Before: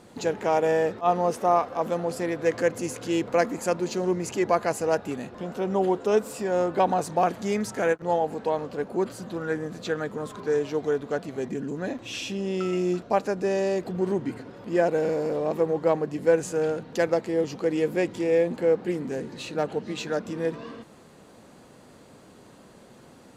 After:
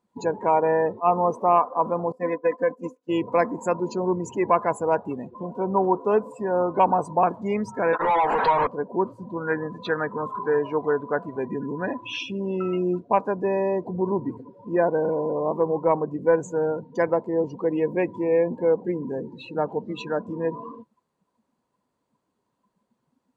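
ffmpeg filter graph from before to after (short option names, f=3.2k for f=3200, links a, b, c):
-filter_complex "[0:a]asettb=1/sr,asplit=3[a][b][c];[a]atrim=end=2.124[d];[b]atrim=start=2.12:end=3.09,asetpts=PTS-STARTPTS,afade=t=in:d=0.004:c=qsin,afade=t=out:st=0.966:d=0.004:c=qsin,agate=range=-33dB:threshold=-26dB:ratio=3:release=100:detection=peak,aecho=1:1:4:0.85,atrim=end_sample=42777,acompressor=threshold=-18dB:ratio=4:attack=3.2:release=140:knee=1:detection=peak[e];[c]atrim=start=3.086[f];[d][e]acrossfade=d=0.004:c1=hsin:c2=qsin[g];[g][f]acrossfade=d=0.004:c1=qsin:c2=hsin,asettb=1/sr,asplit=3[h][i][j];[h]atrim=end=7.934[k];[i]atrim=start=7.93:end=8.67,asetpts=PTS-STARTPTS,afade=t=in:d=0.004:c=qsin,afade=t=out:st=0.736:d=0.004:c=qsin,equalizer=f=190:w=0.42:g=-13,acompressor=threshold=-34dB:ratio=12:attack=3.2:release=140:knee=1:detection=peak,asplit=2[l][m];[m]highpass=f=720:p=1,volume=37dB,asoftclip=type=tanh:threshold=-16.5dB[n];[l][n]amix=inputs=2:normalize=0,lowpass=f=3.7k:p=1,volume=-6dB[o];[j]atrim=start=8.666[p];[k][o]acrossfade=d=0.004:c1=hsin:c2=qsin[q];[q][p]acrossfade=d=0.004:c1=qsin:c2=hsin,asettb=1/sr,asplit=3[r][s][t];[r]atrim=end=9.474[u];[s]atrim=start=9.47:end=12.23,asetpts=PTS-STARTPTS,afade=t=in:d=0.004:c=qsin,afade=t=out:st=2.756:d=0.004:c=qsin,equalizer=f=1.8k:w=0.58:g=5.5,aeval=exprs='val(0)+0.00141*sin(2*PI*1000*n/s)':c=same[v];[t]atrim=start=12.226[w];[u][v]acrossfade=d=0.004:c1=hsin:c2=qsin[x];[x][w]acrossfade=d=0.004:c1=qsin:c2=hsin,equalizer=f=990:t=o:w=0.26:g=12,acontrast=56,afftdn=nr=29:nf=-26,volume=-5dB"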